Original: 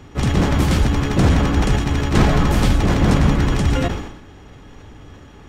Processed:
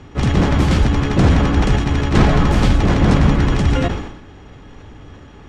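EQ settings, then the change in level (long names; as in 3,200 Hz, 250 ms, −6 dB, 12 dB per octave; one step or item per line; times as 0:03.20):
high-frequency loss of the air 58 metres
+2.0 dB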